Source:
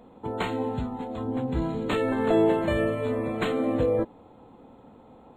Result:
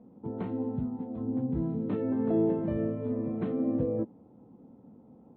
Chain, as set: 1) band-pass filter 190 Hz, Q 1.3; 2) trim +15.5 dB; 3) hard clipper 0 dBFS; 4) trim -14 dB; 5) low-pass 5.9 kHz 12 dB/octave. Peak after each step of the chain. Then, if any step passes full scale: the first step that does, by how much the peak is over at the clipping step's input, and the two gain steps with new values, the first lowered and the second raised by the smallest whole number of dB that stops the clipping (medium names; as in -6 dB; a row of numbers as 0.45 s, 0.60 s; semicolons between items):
-18.5 dBFS, -3.0 dBFS, -3.0 dBFS, -17.0 dBFS, -17.0 dBFS; nothing clips